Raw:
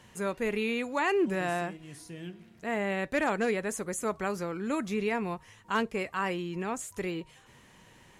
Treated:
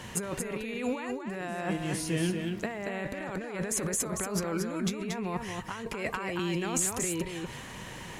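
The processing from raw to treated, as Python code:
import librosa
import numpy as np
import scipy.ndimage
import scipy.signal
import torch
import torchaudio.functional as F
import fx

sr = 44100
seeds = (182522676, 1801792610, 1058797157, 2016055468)

p1 = fx.over_compress(x, sr, threshold_db=-40.0, ratio=-1.0)
p2 = p1 + fx.echo_single(p1, sr, ms=231, db=-5.0, dry=0)
p3 = fx.band_squash(p2, sr, depth_pct=40, at=(6.39, 7.04))
y = p3 * librosa.db_to_amplitude(5.5)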